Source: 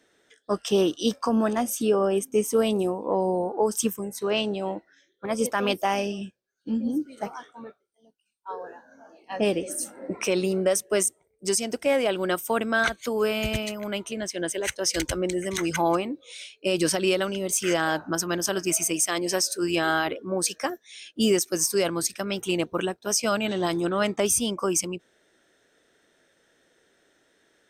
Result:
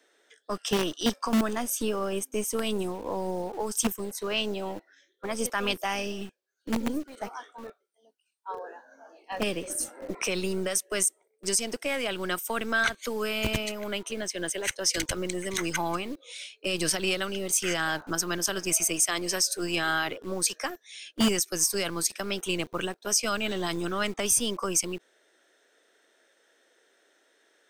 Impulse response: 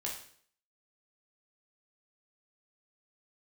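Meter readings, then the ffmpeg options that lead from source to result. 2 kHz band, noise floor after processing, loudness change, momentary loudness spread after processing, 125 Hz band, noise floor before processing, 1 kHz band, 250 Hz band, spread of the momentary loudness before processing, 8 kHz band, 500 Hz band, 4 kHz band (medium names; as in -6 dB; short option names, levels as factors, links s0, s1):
-0.5 dB, -71 dBFS, -3.0 dB, 13 LU, -3.5 dB, -69 dBFS, -4.0 dB, -4.5 dB, 11 LU, 0.0 dB, -7.0 dB, 0.0 dB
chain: -filter_complex "[0:a]acrossover=split=290|1100|2500[s0][s1][s2][s3];[s0]acrusher=bits=5:dc=4:mix=0:aa=0.000001[s4];[s1]acompressor=threshold=0.02:ratio=6[s5];[s4][s5][s2][s3]amix=inputs=4:normalize=0"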